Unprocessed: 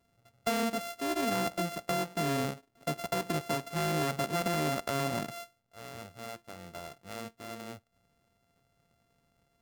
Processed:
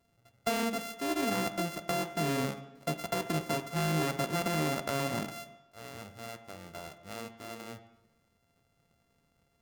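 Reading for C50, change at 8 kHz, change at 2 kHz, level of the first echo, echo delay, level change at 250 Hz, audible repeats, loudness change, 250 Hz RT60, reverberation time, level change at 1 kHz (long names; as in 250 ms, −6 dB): 13.0 dB, 0.0 dB, +0.5 dB, no echo audible, no echo audible, +0.5 dB, no echo audible, 0.0 dB, 0.95 s, 0.95 s, −1.0 dB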